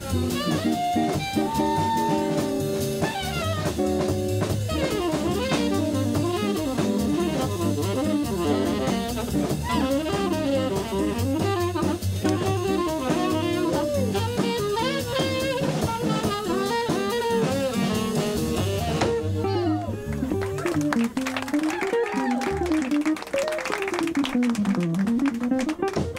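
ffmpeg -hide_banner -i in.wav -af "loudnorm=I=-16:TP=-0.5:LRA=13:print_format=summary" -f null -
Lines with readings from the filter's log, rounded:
Input Integrated:    -24.7 LUFS
Input True Peak:      -8.0 dBTP
Input LRA:             0.7 LU
Input Threshold:     -34.7 LUFS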